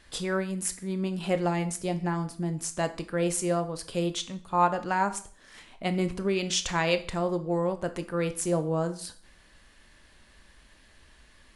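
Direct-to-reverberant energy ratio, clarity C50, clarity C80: 9.5 dB, 14.5 dB, 18.5 dB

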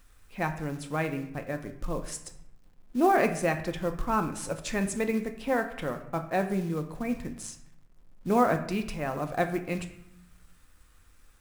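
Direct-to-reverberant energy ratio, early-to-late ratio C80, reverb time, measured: 6.0 dB, 13.5 dB, 0.75 s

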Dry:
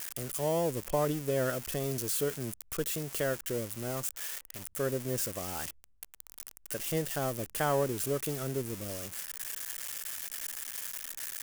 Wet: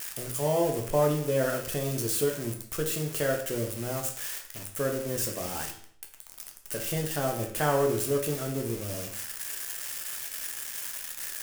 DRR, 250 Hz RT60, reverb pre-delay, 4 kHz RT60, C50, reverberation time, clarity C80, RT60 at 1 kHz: 1.5 dB, 0.60 s, 9 ms, 0.55 s, 7.5 dB, 0.60 s, 11.5 dB, 0.60 s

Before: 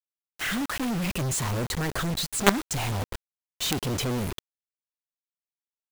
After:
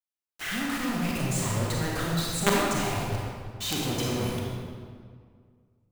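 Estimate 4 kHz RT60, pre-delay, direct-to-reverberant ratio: 1.3 s, 31 ms, −4.0 dB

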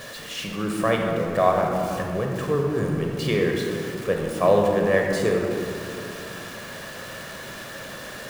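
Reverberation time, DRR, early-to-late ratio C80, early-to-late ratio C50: 2.7 s, 0.5 dB, 3.0 dB, 1.5 dB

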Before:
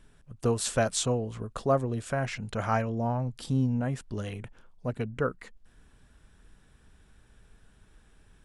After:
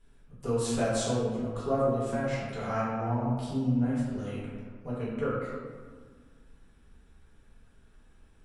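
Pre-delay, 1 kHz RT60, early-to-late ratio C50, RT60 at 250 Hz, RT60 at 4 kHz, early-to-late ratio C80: 4 ms, 1.6 s, −1.0 dB, 2.1 s, 0.85 s, 1.0 dB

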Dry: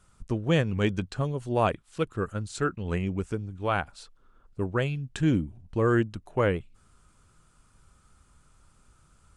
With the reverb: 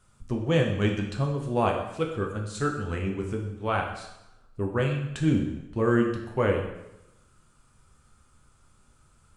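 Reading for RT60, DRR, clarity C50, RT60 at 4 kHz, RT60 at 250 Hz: 0.90 s, 1.0 dB, 5.5 dB, 0.85 s, 0.90 s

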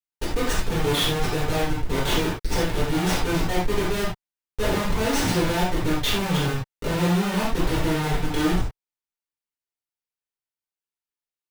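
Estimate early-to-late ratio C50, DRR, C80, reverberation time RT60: 2.0 dB, −9.0 dB, 8.0 dB, non-exponential decay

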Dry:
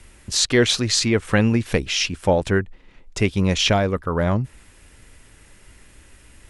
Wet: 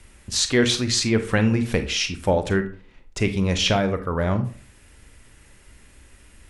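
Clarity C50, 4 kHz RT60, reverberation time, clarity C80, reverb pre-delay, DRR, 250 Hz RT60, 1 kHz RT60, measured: 11.5 dB, 0.25 s, 0.40 s, 17.0 dB, 30 ms, 8.5 dB, 0.50 s, 0.40 s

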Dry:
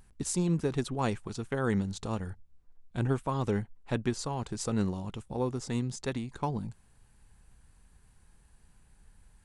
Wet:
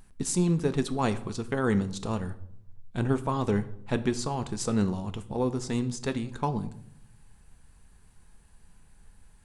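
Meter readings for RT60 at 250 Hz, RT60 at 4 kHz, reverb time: 0.95 s, 0.55 s, 0.70 s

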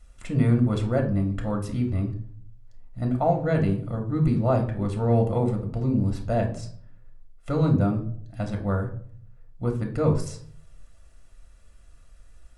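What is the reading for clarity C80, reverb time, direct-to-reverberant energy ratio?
15.0 dB, 0.55 s, 2.5 dB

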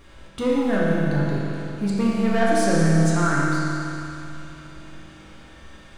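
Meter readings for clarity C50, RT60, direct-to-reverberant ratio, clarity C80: −3.5 dB, 3.0 s, −7.0 dB, −2.0 dB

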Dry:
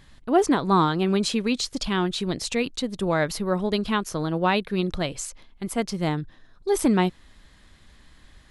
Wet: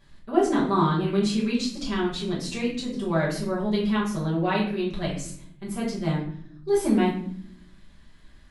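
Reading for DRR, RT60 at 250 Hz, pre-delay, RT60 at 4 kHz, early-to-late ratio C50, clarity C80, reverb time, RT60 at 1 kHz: −7.5 dB, 1.0 s, 5 ms, 0.40 s, 5.5 dB, 9.5 dB, 0.60 s, 0.55 s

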